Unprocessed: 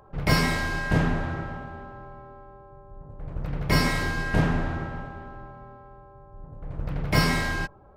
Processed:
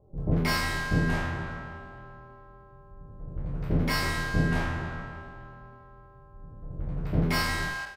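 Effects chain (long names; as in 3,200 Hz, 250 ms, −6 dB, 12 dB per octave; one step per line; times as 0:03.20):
peak hold with a decay on every bin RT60 0.57 s
double-tracking delay 23 ms −10.5 dB
multiband delay without the direct sound lows, highs 180 ms, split 610 Hz
level −4.5 dB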